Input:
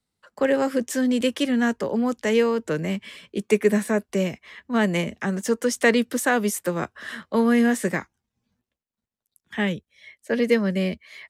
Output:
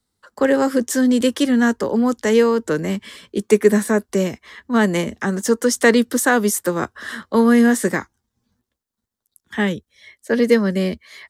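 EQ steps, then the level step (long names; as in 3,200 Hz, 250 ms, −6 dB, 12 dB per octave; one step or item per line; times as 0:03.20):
graphic EQ with 15 bands 160 Hz −6 dB, 630 Hz −5 dB, 2,500 Hz −9 dB
+7.5 dB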